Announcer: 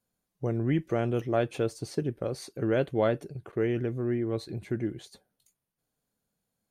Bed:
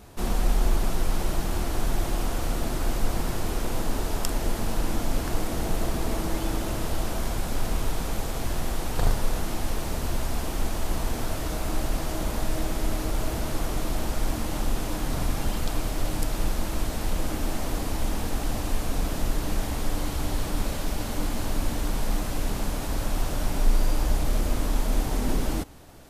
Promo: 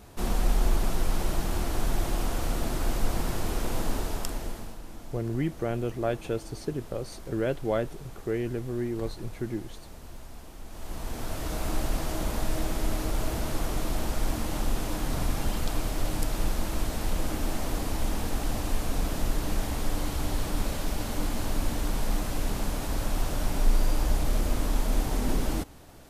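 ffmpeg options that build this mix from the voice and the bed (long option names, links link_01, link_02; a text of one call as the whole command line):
ffmpeg -i stem1.wav -i stem2.wav -filter_complex "[0:a]adelay=4700,volume=-2dB[link_01];[1:a]volume=13.5dB,afade=type=out:start_time=3.89:duration=0.89:silence=0.177828,afade=type=in:start_time=10.66:duration=0.98:silence=0.177828[link_02];[link_01][link_02]amix=inputs=2:normalize=0" out.wav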